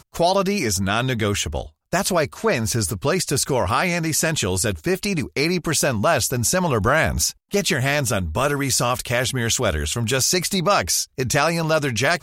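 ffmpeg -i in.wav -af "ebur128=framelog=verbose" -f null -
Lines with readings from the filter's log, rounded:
Integrated loudness:
  I:         -20.4 LUFS
  Threshold: -30.4 LUFS
Loudness range:
  LRA:         1.6 LU
  Threshold: -40.5 LUFS
  LRA low:   -21.5 LUFS
  LRA high:  -19.9 LUFS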